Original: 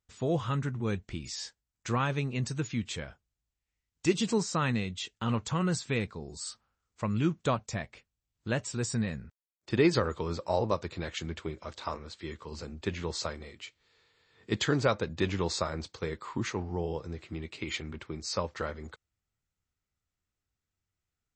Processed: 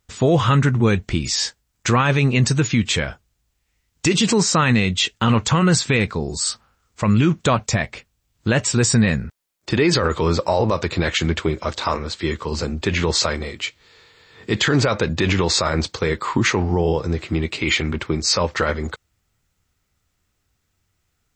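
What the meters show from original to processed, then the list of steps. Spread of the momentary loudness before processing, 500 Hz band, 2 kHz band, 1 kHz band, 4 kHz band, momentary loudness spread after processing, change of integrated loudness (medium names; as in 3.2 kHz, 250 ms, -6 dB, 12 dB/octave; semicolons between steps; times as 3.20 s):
13 LU, +11.0 dB, +15.0 dB, +12.5 dB, +16.0 dB, 9 LU, +13.0 dB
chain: dynamic bell 2.2 kHz, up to +4 dB, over -44 dBFS, Q 0.93; loudness maximiser +24 dB; trim -7 dB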